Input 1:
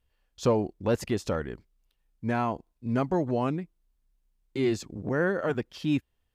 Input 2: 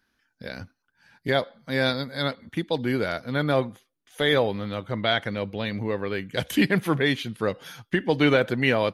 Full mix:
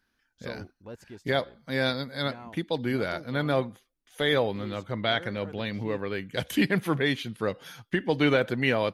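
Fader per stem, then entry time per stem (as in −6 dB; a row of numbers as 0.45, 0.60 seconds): −17.0, −3.0 decibels; 0.00, 0.00 seconds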